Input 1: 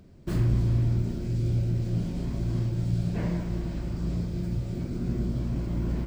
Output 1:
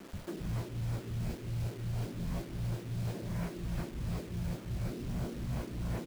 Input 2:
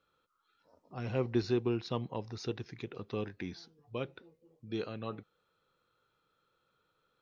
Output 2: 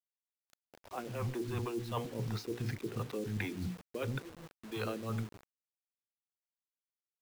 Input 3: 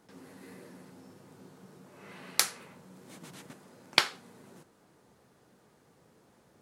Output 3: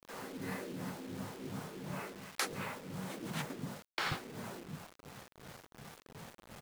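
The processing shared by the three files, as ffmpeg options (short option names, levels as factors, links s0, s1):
-filter_complex "[0:a]highshelf=f=3800:g=-5.5,bandreject=f=60:t=h:w=6,bandreject=f=120:t=h:w=6,bandreject=f=180:t=h:w=6,bandreject=f=240:t=h:w=6,bandreject=f=300:t=h:w=6,bandreject=f=360:t=h:w=6,bandreject=f=420:t=h:w=6,bandreject=f=480:t=h:w=6,acrossover=split=720|2600[s0][s1][s2];[s0]asoftclip=type=tanh:threshold=0.0266[s3];[s3][s1][s2]amix=inputs=3:normalize=0,bass=f=250:g=3,treble=f=4000:g=-4,acrossover=split=460[s4][s5];[s4]aeval=exprs='val(0)*(1-1/2+1/2*cos(2*PI*2.8*n/s))':c=same[s6];[s5]aeval=exprs='val(0)*(1-1/2-1/2*cos(2*PI*2.8*n/s))':c=same[s7];[s6][s7]amix=inputs=2:normalize=0,acrossover=split=260[s8][s9];[s8]adelay=130[s10];[s10][s9]amix=inputs=2:normalize=0,areverse,acompressor=threshold=0.00398:ratio=20,areverse,acrusher=bits=10:mix=0:aa=0.000001,volume=5.62"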